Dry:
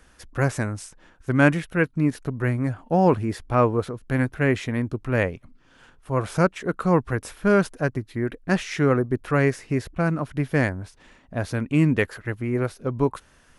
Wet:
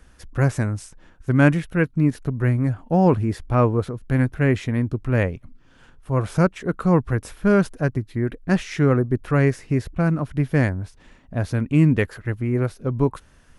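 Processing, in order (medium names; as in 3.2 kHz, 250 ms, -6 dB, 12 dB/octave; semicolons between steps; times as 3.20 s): bass shelf 230 Hz +8.5 dB; trim -1.5 dB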